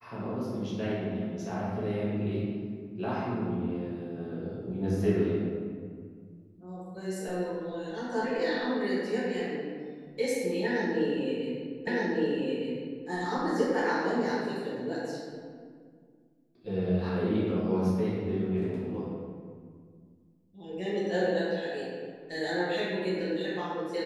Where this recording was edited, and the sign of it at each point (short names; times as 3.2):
11.87 repeat of the last 1.21 s